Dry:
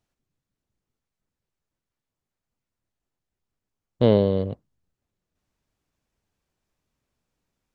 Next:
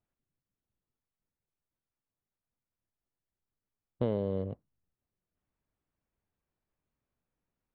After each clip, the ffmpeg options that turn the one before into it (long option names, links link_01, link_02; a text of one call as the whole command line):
ffmpeg -i in.wav -af "acompressor=threshold=-18dB:ratio=6,lowpass=2300,volume=-7.5dB" out.wav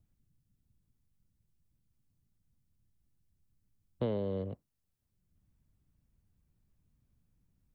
ffmpeg -i in.wav -filter_complex "[0:a]acrossover=split=210|300|910[link_01][link_02][link_03][link_04];[link_01]acompressor=mode=upward:threshold=-52dB:ratio=2.5[link_05];[link_05][link_02][link_03][link_04]amix=inputs=4:normalize=0,highshelf=frequency=3200:gain=8.5,volume=-2.5dB" out.wav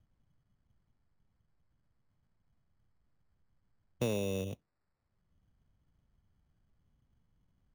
ffmpeg -i in.wav -af "acrusher=samples=14:mix=1:aa=0.000001" out.wav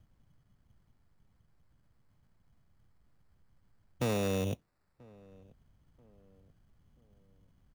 ffmpeg -i in.wav -filter_complex "[0:a]asplit=2[link_01][link_02];[link_02]alimiter=level_in=7dB:limit=-24dB:level=0:latency=1,volume=-7dB,volume=-2dB[link_03];[link_01][link_03]amix=inputs=2:normalize=0,volume=29.5dB,asoftclip=hard,volume=-29.5dB,asplit=2[link_04][link_05];[link_05]adelay=985,lowpass=frequency=1100:poles=1,volume=-24dB,asplit=2[link_06][link_07];[link_07]adelay=985,lowpass=frequency=1100:poles=1,volume=0.45,asplit=2[link_08][link_09];[link_09]adelay=985,lowpass=frequency=1100:poles=1,volume=0.45[link_10];[link_04][link_06][link_08][link_10]amix=inputs=4:normalize=0,volume=2dB" out.wav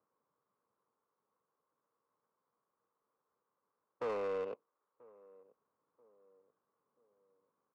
ffmpeg -i in.wav -filter_complex "[0:a]highpass=450,equalizer=frequency=460:width_type=q:width=4:gain=8,equalizer=frequency=700:width_type=q:width=4:gain=-8,equalizer=frequency=1100:width_type=q:width=4:gain=9,equalizer=frequency=1800:width_type=q:width=4:gain=-5,lowpass=frequency=2400:width=0.5412,lowpass=frequency=2400:width=1.3066,asplit=2[link_01][link_02];[link_02]highpass=frequency=720:poles=1,volume=14dB,asoftclip=type=tanh:threshold=-20.5dB[link_03];[link_01][link_03]amix=inputs=2:normalize=0,lowpass=frequency=1700:poles=1,volume=-6dB,adynamicsmooth=sensitivity=7:basefreq=1300,volume=-6.5dB" out.wav